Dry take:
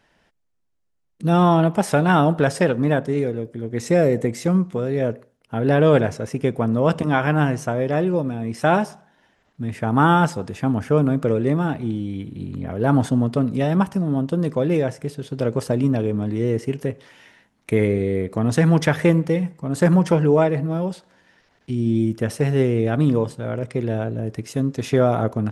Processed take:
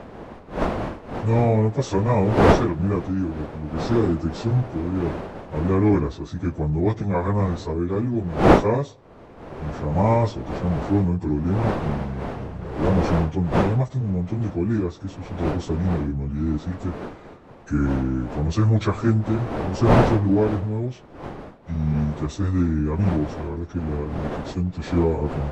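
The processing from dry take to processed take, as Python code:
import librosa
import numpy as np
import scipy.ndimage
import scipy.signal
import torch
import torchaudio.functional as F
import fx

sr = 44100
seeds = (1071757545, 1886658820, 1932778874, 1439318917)

y = fx.pitch_bins(x, sr, semitones=-7.0)
y = fx.dmg_wind(y, sr, seeds[0], corner_hz=610.0, level_db=-26.0)
y = F.gain(torch.from_numpy(y), -2.0).numpy()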